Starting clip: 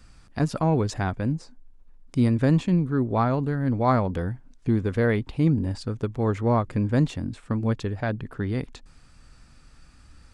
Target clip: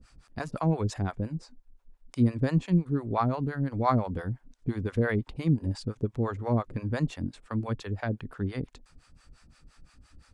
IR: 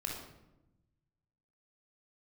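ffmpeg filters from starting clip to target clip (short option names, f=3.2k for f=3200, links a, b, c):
-filter_complex "[0:a]acrossover=split=540[a][b];[a]aeval=exprs='val(0)*(1-1/2+1/2*cos(2*PI*5.8*n/s))':c=same[c];[b]aeval=exprs='val(0)*(1-1/2-1/2*cos(2*PI*5.8*n/s))':c=same[d];[c][d]amix=inputs=2:normalize=0"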